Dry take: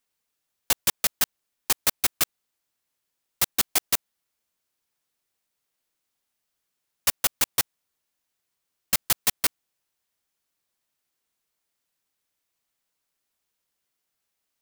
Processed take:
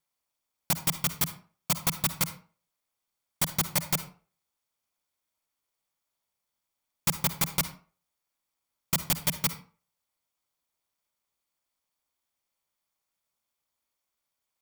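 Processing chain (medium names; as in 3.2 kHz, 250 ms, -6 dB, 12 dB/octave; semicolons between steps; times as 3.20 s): comb filter that takes the minimum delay 0.88 ms; peaking EQ 710 Hz +9 dB 0.59 oct; ring modulator 160 Hz; reverberation RT60 0.40 s, pre-delay 49 ms, DRR 11 dB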